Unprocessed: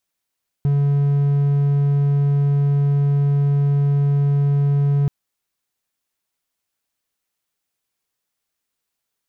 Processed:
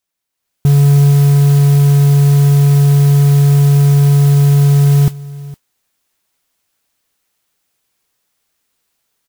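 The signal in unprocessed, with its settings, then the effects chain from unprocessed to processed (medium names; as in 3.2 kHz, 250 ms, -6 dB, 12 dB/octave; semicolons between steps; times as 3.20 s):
tone triangle 142 Hz -12 dBFS 4.43 s
level rider gain up to 11.5 dB; modulation noise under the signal 22 dB; delay 461 ms -20 dB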